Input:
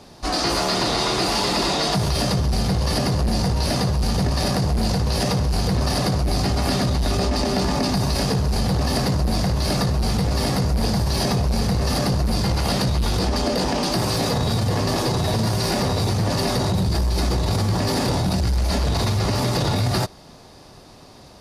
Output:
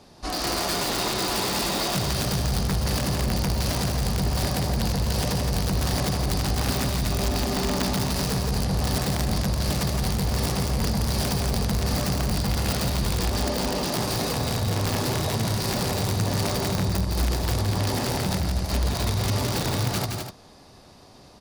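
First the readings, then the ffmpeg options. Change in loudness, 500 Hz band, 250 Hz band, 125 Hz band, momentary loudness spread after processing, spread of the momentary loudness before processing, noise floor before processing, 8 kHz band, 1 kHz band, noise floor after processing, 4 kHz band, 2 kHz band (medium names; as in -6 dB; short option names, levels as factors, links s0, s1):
-4.0 dB, -5.0 dB, -4.5 dB, -4.0 dB, 1 LU, 1 LU, -45 dBFS, -0.5 dB, -4.5 dB, -49 dBFS, -4.0 dB, -2.5 dB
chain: -filter_complex "[0:a]aeval=exprs='(mod(4.73*val(0)+1,2)-1)/4.73':c=same,asplit=2[s0][s1];[s1]aecho=0:1:169.1|247.8:0.562|0.355[s2];[s0][s2]amix=inputs=2:normalize=0,volume=0.501"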